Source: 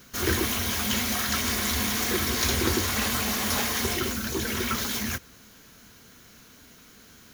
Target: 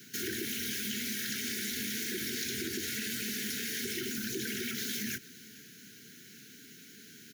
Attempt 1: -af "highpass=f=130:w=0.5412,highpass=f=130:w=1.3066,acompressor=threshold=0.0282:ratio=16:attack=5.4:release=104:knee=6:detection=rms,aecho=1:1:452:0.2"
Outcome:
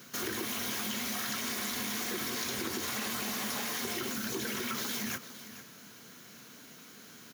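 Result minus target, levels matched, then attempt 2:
1 kHz band +15.5 dB; echo-to-direct +8.5 dB
-af "highpass=f=130:w=0.5412,highpass=f=130:w=1.3066,acompressor=threshold=0.0282:ratio=16:attack=5.4:release=104:knee=6:detection=rms,asuperstop=centerf=810:order=20:qfactor=0.81,aecho=1:1:452:0.075"

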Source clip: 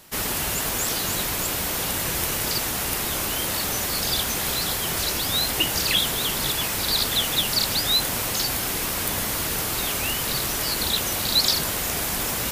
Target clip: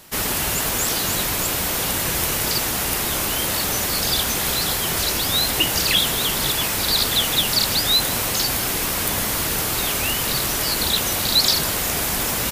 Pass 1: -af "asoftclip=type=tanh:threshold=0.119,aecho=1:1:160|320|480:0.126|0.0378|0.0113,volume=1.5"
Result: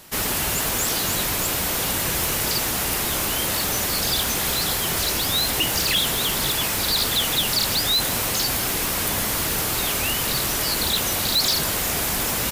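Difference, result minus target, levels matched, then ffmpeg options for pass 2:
saturation: distortion +17 dB
-af "asoftclip=type=tanh:threshold=0.447,aecho=1:1:160|320|480:0.126|0.0378|0.0113,volume=1.5"

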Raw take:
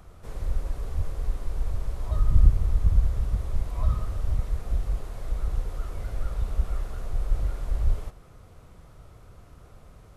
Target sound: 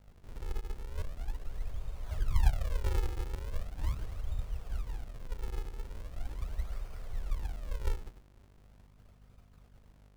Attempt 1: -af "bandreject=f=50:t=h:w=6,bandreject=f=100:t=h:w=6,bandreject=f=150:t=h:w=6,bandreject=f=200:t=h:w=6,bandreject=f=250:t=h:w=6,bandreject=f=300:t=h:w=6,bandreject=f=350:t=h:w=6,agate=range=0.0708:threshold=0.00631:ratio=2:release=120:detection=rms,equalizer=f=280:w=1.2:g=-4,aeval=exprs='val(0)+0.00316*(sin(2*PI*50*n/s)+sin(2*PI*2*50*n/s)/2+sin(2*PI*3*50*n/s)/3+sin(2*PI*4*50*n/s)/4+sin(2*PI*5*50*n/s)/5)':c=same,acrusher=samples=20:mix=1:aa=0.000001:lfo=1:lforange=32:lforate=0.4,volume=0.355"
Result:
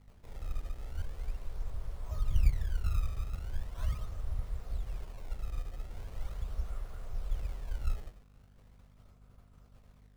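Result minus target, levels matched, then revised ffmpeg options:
decimation with a swept rate: distortion -8 dB
-af "bandreject=f=50:t=h:w=6,bandreject=f=100:t=h:w=6,bandreject=f=150:t=h:w=6,bandreject=f=200:t=h:w=6,bandreject=f=250:t=h:w=6,bandreject=f=300:t=h:w=6,bandreject=f=350:t=h:w=6,agate=range=0.0708:threshold=0.00631:ratio=2:release=120:detection=rms,equalizer=f=280:w=1.2:g=-4,aeval=exprs='val(0)+0.00316*(sin(2*PI*50*n/s)+sin(2*PI*2*50*n/s)/2+sin(2*PI*3*50*n/s)/3+sin(2*PI*4*50*n/s)/4+sin(2*PI*5*50*n/s)/5)':c=same,acrusher=samples=58:mix=1:aa=0.000001:lfo=1:lforange=92.8:lforate=0.4,volume=0.355"

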